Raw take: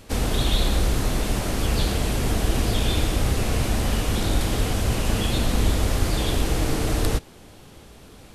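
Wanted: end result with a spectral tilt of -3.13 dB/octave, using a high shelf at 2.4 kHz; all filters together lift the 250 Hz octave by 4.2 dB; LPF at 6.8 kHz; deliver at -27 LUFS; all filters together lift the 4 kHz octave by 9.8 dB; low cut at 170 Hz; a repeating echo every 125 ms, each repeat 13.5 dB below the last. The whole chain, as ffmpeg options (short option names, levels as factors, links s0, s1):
-af "highpass=170,lowpass=6800,equalizer=f=250:t=o:g=6.5,highshelf=f=2400:g=5,equalizer=f=4000:t=o:g=8,aecho=1:1:125|250:0.211|0.0444,volume=0.501"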